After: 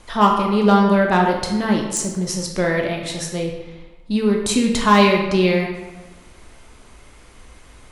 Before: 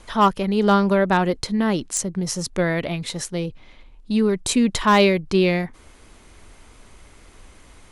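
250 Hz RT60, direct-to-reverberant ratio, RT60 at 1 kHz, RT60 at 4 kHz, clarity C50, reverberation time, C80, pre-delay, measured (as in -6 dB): 1.1 s, 0.5 dB, 1.2 s, 0.80 s, 4.0 dB, 1.2 s, 6.0 dB, 12 ms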